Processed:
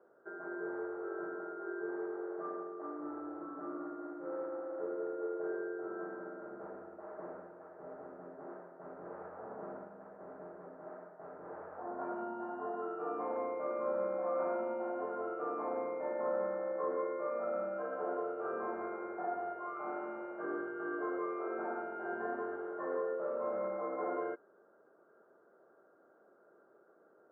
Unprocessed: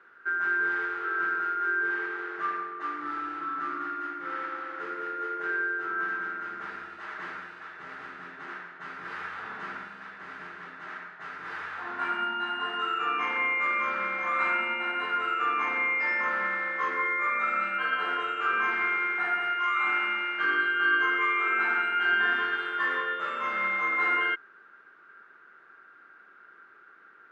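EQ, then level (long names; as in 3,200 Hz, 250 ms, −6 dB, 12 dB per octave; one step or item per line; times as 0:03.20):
transistor ladder low-pass 680 Hz, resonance 60%
low-shelf EQ 130 Hz −8 dB
+9.5 dB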